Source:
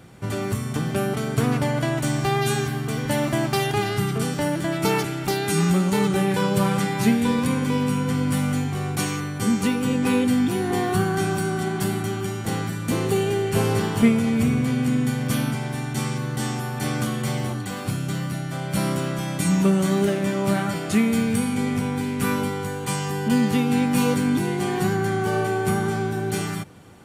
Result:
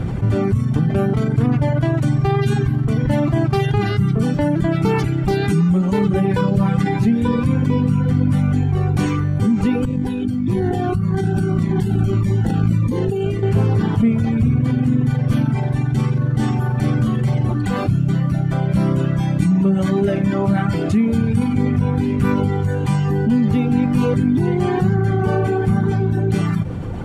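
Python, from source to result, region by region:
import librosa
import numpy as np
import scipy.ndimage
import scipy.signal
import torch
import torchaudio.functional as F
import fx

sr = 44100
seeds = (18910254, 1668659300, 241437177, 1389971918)

y = fx.chain(x, sr, fx.over_compress(threshold_db=-28.0, ratio=-1.0),
    fx.notch_cascade(direction='falling', hz=1.7), at=(9.85, 13.43))
y = fx.dereverb_blind(y, sr, rt60_s=1.6)
y = fx.riaa(y, sr, side='playback')
y = fx.env_flatten(y, sr, amount_pct=70)
y = F.gain(torch.from_numpy(y), -7.0).numpy()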